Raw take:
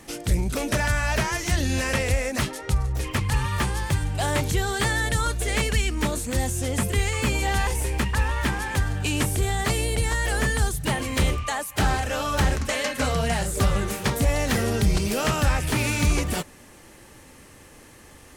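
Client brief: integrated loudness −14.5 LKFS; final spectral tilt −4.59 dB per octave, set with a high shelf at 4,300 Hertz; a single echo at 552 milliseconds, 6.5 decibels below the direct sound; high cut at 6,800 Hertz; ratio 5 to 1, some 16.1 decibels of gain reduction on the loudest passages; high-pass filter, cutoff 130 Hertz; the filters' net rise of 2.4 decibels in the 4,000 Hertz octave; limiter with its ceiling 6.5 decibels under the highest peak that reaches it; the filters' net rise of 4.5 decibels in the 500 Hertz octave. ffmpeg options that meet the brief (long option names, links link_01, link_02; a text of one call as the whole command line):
ffmpeg -i in.wav -af "highpass=130,lowpass=6800,equalizer=frequency=500:width_type=o:gain=5.5,equalizer=frequency=4000:width_type=o:gain=8,highshelf=frequency=4300:gain=-8.5,acompressor=threshold=-38dB:ratio=5,alimiter=level_in=6dB:limit=-24dB:level=0:latency=1,volume=-6dB,aecho=1:1:552:0.473,volume=25dB" out.wav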